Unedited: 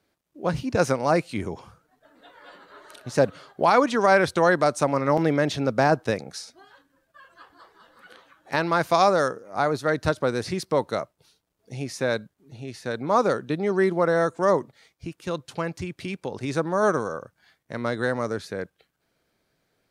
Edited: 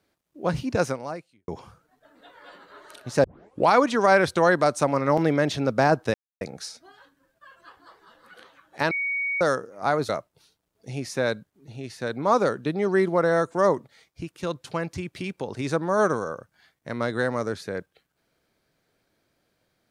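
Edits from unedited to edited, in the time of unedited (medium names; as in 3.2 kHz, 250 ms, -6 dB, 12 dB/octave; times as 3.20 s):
0.72–1.48 s: fade out quadratic
3.24 s: tape start 0.44 s
6.14 s: insert silence 0.27 s
8.64–9.14 s: bleep 2.24 kHz -24 dBFS
9.82–10.93 s: delete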